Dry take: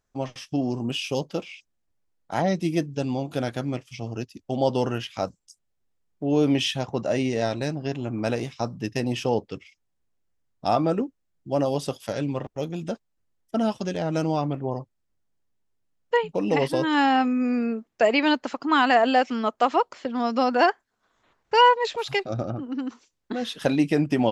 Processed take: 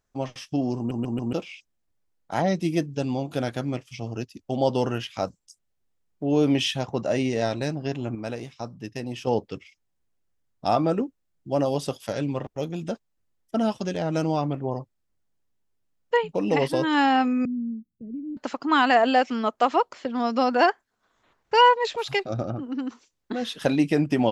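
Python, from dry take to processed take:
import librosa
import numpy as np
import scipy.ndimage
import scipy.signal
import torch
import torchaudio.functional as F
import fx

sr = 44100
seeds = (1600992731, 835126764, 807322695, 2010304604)

y = fx.cheby2_bandstop(x, sr, low_hz=720.0, high_hz=7600.0, order=4, stop_db=60, at=(17.45, 18.37))
y = fx.edit(y, sr, fx.stutter_over(start_s=0.77, slice_s=0.14, count=4),
    fx.clip_gain(start_s=8.15, length_s=1.12, db=-6.5), tone=tone)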